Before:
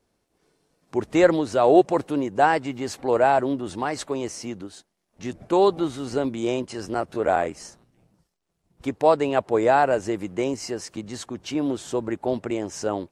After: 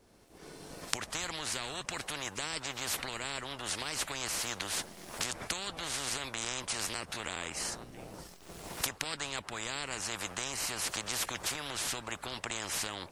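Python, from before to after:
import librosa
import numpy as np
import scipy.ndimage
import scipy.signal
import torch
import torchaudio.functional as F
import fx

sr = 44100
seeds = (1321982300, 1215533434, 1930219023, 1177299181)

y = fx.recorder_agc(x, sr, target_db=-10.0, rise_db_per_s=22.0, max_gain_db=30)
y = fx.spectral_comp(y, sr, ratio=10.0)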